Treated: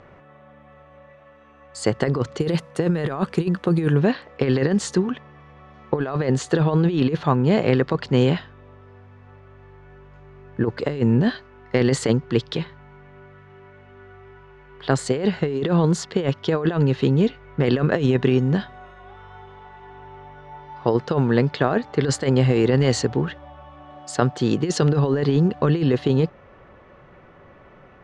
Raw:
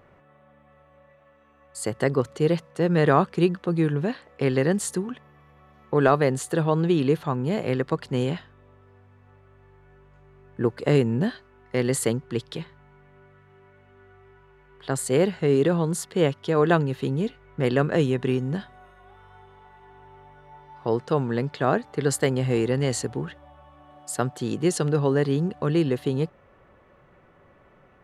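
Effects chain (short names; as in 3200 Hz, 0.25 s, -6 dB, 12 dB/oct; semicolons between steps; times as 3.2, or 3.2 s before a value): negative-ratio compressor -23 dBFS, ratio -0.5; LPF 6700 Hz 24 dB/oct, from 2.4 s 11000 Hz, from 3.99 s 6200 Hz; gain +5.5 dB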